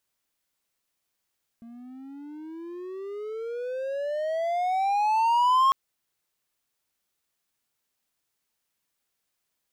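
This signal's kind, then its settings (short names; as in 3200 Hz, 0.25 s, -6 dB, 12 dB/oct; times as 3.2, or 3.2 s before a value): gliding synth tone triangle, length 4.10 s, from 229 Hz, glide +27 st, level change +25.5 dB, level -14.5 dB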